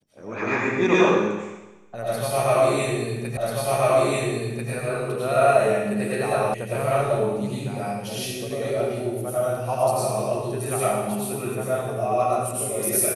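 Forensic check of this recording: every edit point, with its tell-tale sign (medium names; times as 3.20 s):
3.37 s: repeat of the last 1.34 s
6.54 s: sound stops dead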